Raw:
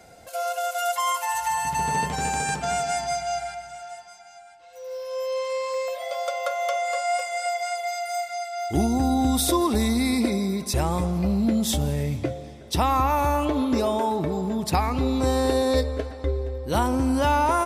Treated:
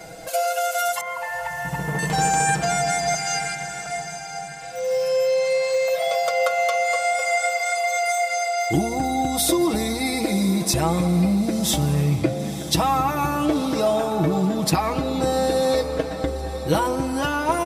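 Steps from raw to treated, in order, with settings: 3.14–3.86 HPF 1000 Hz 24 dB/oct; compressor 4:1, threshold -29 dBFS, peak gain reduction 10.5 dB; comb 6.2 ms, depth 83%; 1.01–1.99 LPF 1800 Hz 12 dB/oct; on a send: diffused feedback echo 0.984 s, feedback 44%, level -12 dB; on the sum: gain +8.5 dB

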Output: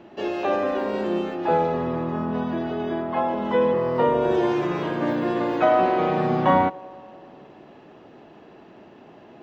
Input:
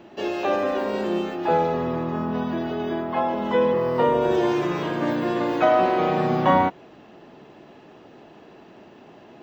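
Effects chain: high shelf 4500 Hz -8 dB; on a send: band-limited delay 95 ms, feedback 79%, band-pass 550 Hz, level -22 dB

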